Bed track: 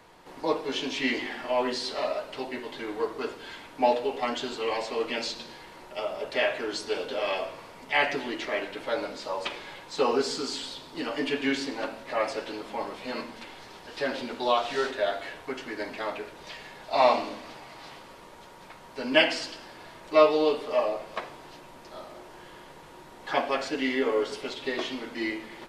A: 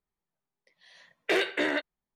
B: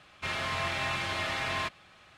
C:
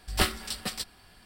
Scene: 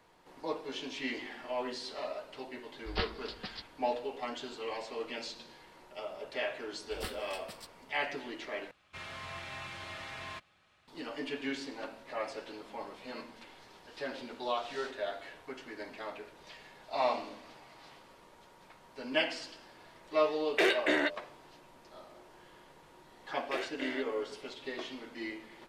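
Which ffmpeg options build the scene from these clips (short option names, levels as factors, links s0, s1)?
-filter_complex "[3:a]asplit=2[s0][s1];[1:a]asplit=2[s2][s3];[0:a]volume=0.335[s4];[s0]aresample=11025,aresample=44100[s5];[s2]bandreject=f=85.04:t=h:w=4,bandreject=f=170.08:t=h:w=4,bandreject=f=255.12:t=h:w=4,bandreject=f=340.16:t=h:w=4,bandreject=f=425.2:t=h:w=4,bandreject=f=510.24:t=h:w=4,bandreject=f=595.28:t=h:w=4,bandreject=f=680.32:t=h:w=4[s6];[s4]asplit=2[s7][s8];[s7]atrim=end=8.714[s9];[2:a]atrim=end=2.17,asetpts=PTS-STARTPTS,volume=0.266[s10];[s8]atrim=start=10.876[s11];[s5]atrim=end=1.25,asetpts=PTS-STARTPTS,volume=0.376,afade=t=in:d=0.004:c=hsin,afade=t=out:st=1.246:d=0.004:c=hsin,adelay=2780[s12];[s1]atrim=end=1.25,asetpts=PTS-STARTPTS,volume=0.158,afade=t=in:d=0.004:c=hsin,afade=t=out:st=1.246:d=0.004:c=hsin,adelay=6830[s13];[s6]atrim=end=2.15,asetpts=PTS-STARTPTS,volume=0.891,afade=t=in:d=0.004:c=hsin,afade=t=out:st=2.146:d=0.004:c=hsin,adelay=19290[s14];[s3]atrim=end=2.15,asetpts=PTS-STARTPTS,volume=0.224,afade=t=in:d=0.004:c=hsin,afade=t=out:st=2.146:d=0.004:c=hsin,adelay=22220[s15];[s9][s10]acrossfade=d=0.004:c1=hsin:c2=hsin[s16];[s16][s11]acrossfade=d=0.004:c1=hsin:c2=hsin[s17];[s17][s12][s13][s14][s15]amix=inputs=5:normalize=0"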